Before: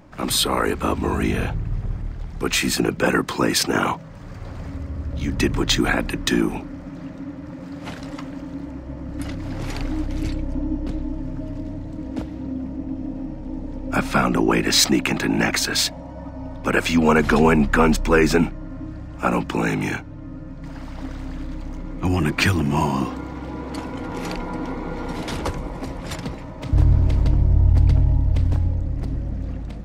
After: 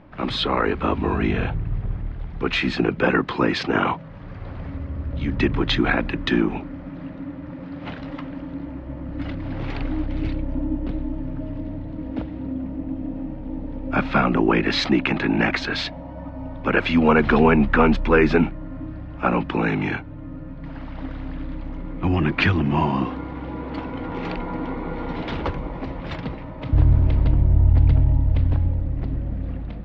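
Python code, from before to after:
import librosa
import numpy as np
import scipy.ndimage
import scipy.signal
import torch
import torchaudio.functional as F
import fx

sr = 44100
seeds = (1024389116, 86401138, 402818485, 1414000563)

y = scipy.signal.sosfilt(scipy.signal.butter(4, 3600.0, 'lowpass', fs=sr, output='sos'), x)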